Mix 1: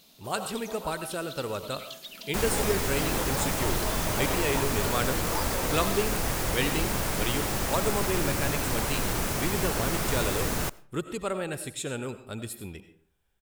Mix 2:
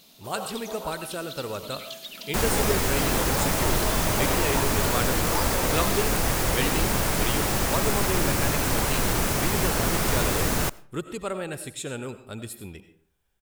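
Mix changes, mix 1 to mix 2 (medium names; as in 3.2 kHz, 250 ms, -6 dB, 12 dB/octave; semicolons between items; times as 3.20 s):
first sound: send on; second sound +4.5 dB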